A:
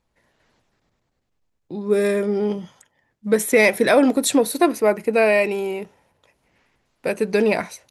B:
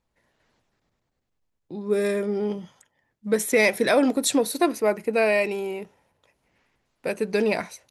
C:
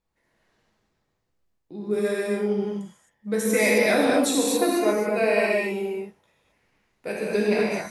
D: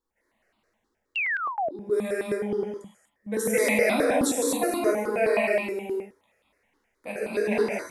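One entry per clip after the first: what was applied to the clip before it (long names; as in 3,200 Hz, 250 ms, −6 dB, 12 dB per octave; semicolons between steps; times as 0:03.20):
dynamic equaliser 5,300 Hz, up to +4 dB, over −36 dBFS, Q 0.99; level −4.5 dB
reverb whose tail is shaped and stops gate 290 ms flat, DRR −5.5 dB; level −6 dB
sound drawn into the spectrogram fall, 0:01.15–0:01.71, 580–2,900 Hz −26 dBFS; low shelf with overshoot 190 Hz −6 dB, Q 3; step-sequenced phaser 9.5 Hz 650–1,700 Hz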